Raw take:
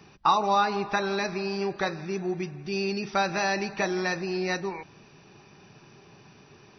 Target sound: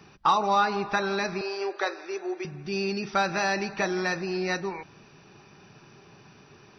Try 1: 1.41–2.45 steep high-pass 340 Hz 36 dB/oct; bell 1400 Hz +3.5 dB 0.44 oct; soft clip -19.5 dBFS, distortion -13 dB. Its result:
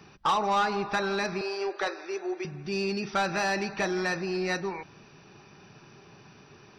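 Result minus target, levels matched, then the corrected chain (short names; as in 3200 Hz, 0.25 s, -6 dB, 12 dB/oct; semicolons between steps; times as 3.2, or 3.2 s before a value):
soft clip: distortion +12 dB
1.41–2.45 steep high-pass 340 Hz 36 dB/oct; bell 1400 Hz +3.5 dB 0.44 oct; soft clip -10 dBFS, distortion -25 dB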